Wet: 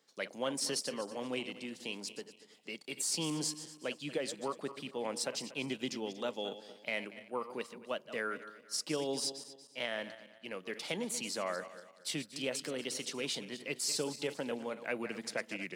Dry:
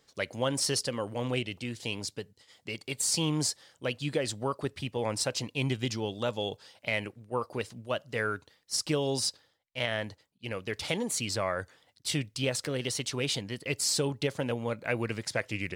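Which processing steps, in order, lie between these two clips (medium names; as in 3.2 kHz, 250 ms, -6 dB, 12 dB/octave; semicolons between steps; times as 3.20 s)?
backward echo that repeats 118 ms, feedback 54%, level -12 dB; steep high-pass 170 Hz 36 dB/octave; trim -6 dB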